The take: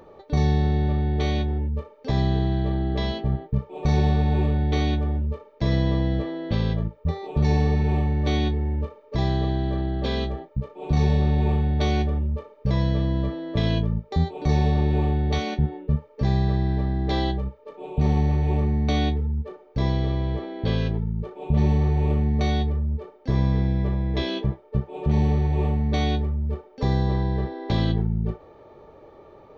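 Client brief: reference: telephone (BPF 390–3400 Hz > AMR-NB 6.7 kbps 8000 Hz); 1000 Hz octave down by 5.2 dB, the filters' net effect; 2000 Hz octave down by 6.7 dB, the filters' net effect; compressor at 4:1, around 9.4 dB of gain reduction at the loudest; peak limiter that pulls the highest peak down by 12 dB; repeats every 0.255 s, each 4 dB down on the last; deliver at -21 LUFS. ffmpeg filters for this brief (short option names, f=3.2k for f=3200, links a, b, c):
-af "equalizer=f=1k:t=o:g=-6.5,equalizer=f=2k:t=o:g=-5.5,acompressor=threshold=-28dB:ratio=4,alimiter=level_in=4dB:limit=-24dB:level=0:latency=1,volume=-4dB,highpass=390,lowpass=3.4k,aecho=1:1:255|510|765|1020|1275|1530|1785|2040|2295:0.631|0.398|0.25|0.158|0.0994|0.0626|0.0394|0.0249|0.0157,volume=23.5dB" -ar 8000 -c:a libopencore_amrnb -b:a 6700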